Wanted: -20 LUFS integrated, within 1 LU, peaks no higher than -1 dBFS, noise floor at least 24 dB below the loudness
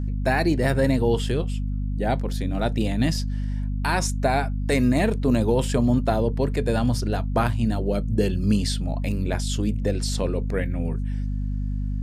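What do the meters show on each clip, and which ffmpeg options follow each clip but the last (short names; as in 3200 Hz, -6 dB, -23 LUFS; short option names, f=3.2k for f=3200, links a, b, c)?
hum 50 Hz; harmonics up to 250 Hz; hum level -24 dBFS; loudness -24.0 LUFS; peak -8.5 dBFS; loudness target -20.0 LUFS
-> -af "bandreject=f=50:t=h:w=4,bandreject=f=100:t=h:w=4,bandreject=f=150:t=h:w=4,bandreject=f=200:t=h:w=4,bandreject=f=250:t=h:w=4"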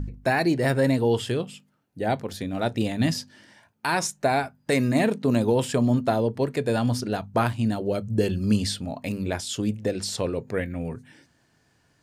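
hum none; loudness -25.5 LUFS; peak -9.5 dBFS; loudness target -20.0 LUFS
-> -af "volume=5.5dB"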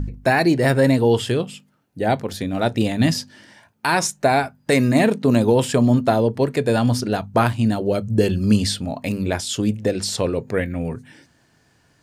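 loudness -20.0 LUFS; peak -4.0 dBFS; noise floor -60 dBFS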